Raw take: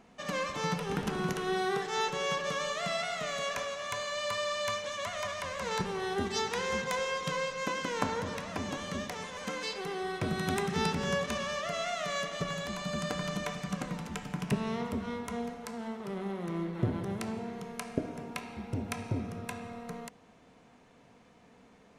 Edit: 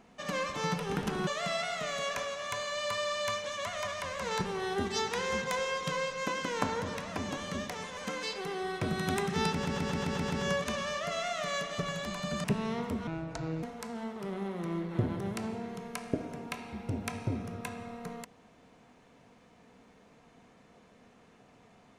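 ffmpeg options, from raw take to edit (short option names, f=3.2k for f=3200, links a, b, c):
-filter_complex "[0:a]asplit=11[a][b][c][d][e][f][g][h][i][j][k];[a]atrim=end=1.272[l];[b]atrim=start=2.668:end=11.052[m];[c]atrim=start=10.918:end=11.052[n];[d]atrim=start=10.918:end=11.052[o];[e]atrim=start=10.918:end=11.052[p];[f]atrim=start=10.918:end=11.052[q];[g]atrim=start=10.918:end=11.052[r];[h]atrim=start=10.918:end=13.062[s];[i]atrim=start=14.458:end=15.094[t];[j]atrim=start=15.09:end=15.47,asetpts=PTS-STARTPTS,asetrate=29988,aresample=44100,atrim=end_sample=24644,asetpts=PTS-STARTPTS[u];[k]atrim=start=15.466[v];[l][m]acrossfade=d=0.004:c1=hsin:c2=hsin[w];[w][n]acrossfade=d=0.004:c1=hsin:c2=hsin[x];[x][o]acrossfade=d=0.004:c1=hsin:c2=hsin[y];[y][p]acrossfade=d=0.004:c1=hsin:c2=hsin[z];[z][q]acrossfade=d=0.004:c1=hsin:c2=hsin[aa];[aa][r]acrossfade=d=0.004:c1=hsin:c2=hsin[ab];[ab][s]acrossfade=d=0.004:c1=hsin:c2=hsin[ac];[ac][t]acrossfade=d=0.004:c1=hsin:c2=hsin[ad];[ad][u]acrossfade=d=0.004:c1=hsin:c2=hsin[ae];[ae][v]acrossfade=d=0.004:c1=hsin:c2=hsin"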